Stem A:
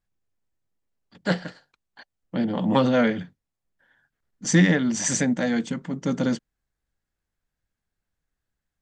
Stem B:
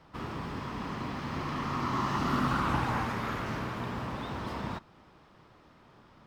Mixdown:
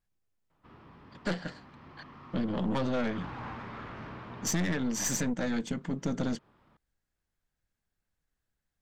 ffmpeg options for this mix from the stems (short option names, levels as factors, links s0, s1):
-filter_complex "[0:a]acontrast=69,volume=0.531[s0];[1:a]lowpass=3600,asoftclip=type=tanh:threshold=0.0531,adelay=500,volume=0.596,afade=t=in:st=2.78:d=0.67:silence=0.375837[s1];[s0][s1]amix=inputs=2:normalize=0,aeval=exprs='(tanh(8.91*val(0)+0.6)-tanh(0.6))/8.91':c=same,acompressor=threshold=0.0398:ratio=3"